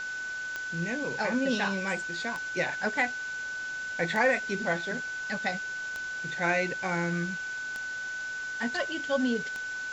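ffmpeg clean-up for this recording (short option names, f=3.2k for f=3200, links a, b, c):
-af "adeclick=t=4,bandreject=f=1.5k:w=30,afwtdn=0.0063"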